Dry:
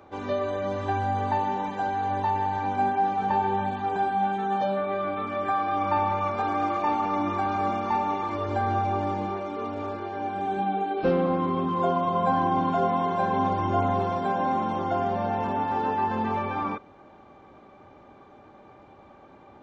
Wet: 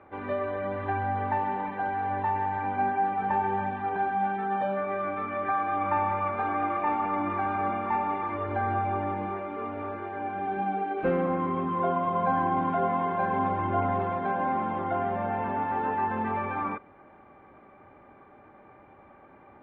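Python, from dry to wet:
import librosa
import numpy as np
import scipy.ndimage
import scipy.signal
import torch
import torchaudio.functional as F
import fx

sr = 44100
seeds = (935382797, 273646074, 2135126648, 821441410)

y = fx.ladder_lowpass(x, sr, hz=2500.0, resonance_pct=40)
y = y * 10.0 ** (5.0 / 20.0)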